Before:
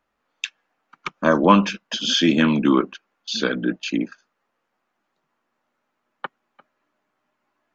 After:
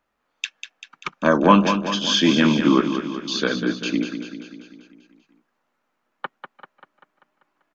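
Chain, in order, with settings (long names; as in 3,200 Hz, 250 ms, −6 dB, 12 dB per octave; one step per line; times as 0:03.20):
on a send: repeating echo 195 ms, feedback 57%, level −8.5 dB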